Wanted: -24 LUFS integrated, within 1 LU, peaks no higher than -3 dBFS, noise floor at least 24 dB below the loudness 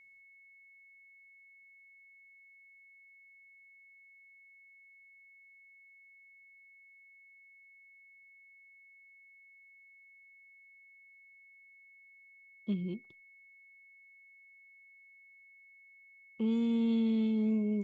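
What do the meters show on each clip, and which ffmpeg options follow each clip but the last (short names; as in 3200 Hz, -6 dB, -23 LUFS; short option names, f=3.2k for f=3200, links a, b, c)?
steady tone 2200 Hz; tone level -57 dBFS; loudness -32.0 LUFS; peak -24.0 dBFS; loudness target -24.0 LUFS
-> -af "bandreject=f=2.2k:w=30"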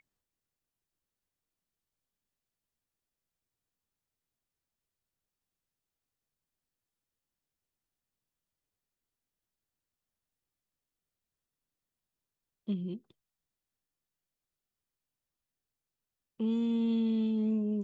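steady tone none; loudness -31.5 LUFS; peak -24.0 dBFS; loudness target -24.0 LUFS
-> -af "volume=7.5dB"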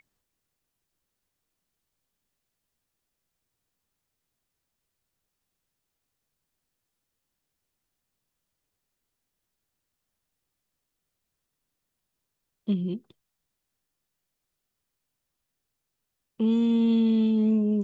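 loudness -24.0 LUFS; peak -16.5 dBFS; noise floor -83 dBFS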